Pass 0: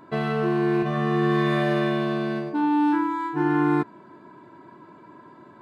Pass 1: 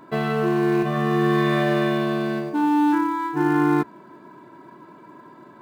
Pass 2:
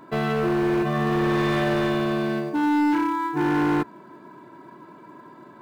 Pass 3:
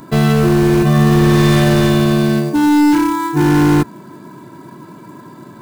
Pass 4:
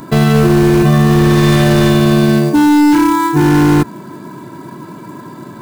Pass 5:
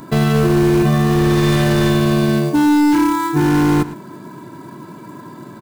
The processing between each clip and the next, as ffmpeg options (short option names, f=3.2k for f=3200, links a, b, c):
-filter_complex "[0:a]equalizer=f=83:t=o:w=0.43:g=-14,asplit=2[a][b];[b]acrusher=bits=4:mode=log:mix=0:aa=0.000001,volume=-10.5dB[c];[a][c]amix=inputs=2:normalize=0"
-af "asoftclip=type=hard:threshold=-18.5dB"
-af "bass=f=250:g=12,treble=f=4k:g=15,volume=6dB"
-af "alimiter=level_in=6.5dB:limit=-1dB:release=50:level=0:latency=1,volume=-1dB"
-filter_complex "[0:a]asplit=2[a][b];[b]adelay=110.8,volume=-15dB,highshelf=f=4k:g=-2.49[c];[a][c]amix=inputs=2:normalize=0,volume=-4.5dB"